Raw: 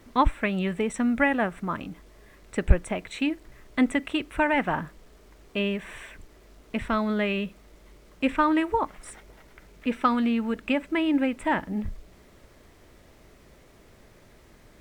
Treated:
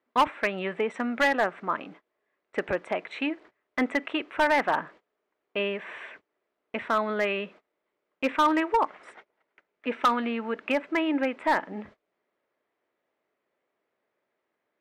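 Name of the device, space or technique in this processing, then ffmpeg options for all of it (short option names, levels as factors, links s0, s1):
walkie-talkie: -af "highpass=420,lowpass=2500,asoftclip=type=hard:threshold=0.106,agate=range=0.0631:threshold=0.00282:ratio=16:detection=peak,volume=1.5"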